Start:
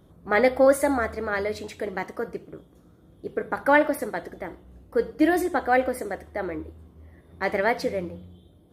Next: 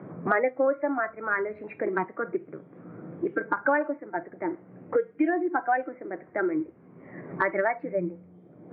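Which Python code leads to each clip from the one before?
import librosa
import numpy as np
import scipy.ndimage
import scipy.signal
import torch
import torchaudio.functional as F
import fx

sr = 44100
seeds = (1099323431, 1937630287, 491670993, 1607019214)

y = scipy.signal.sosfilt(scipy.signal.cheby1(5, 1.0, [110.0, 2300.0], 'bandpass', fs=sr, output='sos'), x)
y = fx.noise_reduce_blind(y, sr, reduce_db=14)
y = fx.band_squash(y, sr, depth_pct=100)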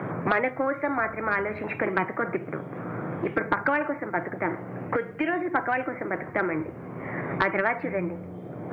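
y = fx.peak_eq(x, sr, hz=120.0, db=8.5, octaves=0.8)
y = fx.spectral_comp(y, sr, ratio=2.0)
y = F.gain(torch.from_numpy(y), 3.0).numpy()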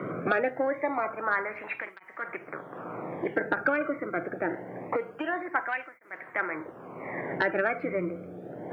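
y = fx.flanger_cancel(x, sr, hz=0.25, depth_ms=1.2)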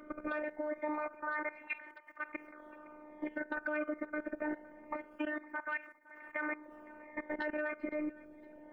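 y = fx.level_steps(x, sr, step_db=17)
y = fx.robotise(y, sr, hz=302.0)
y = fx.echo_feedback(y, sr, ms=512, feedback_pct=33, wet_db=-21.0)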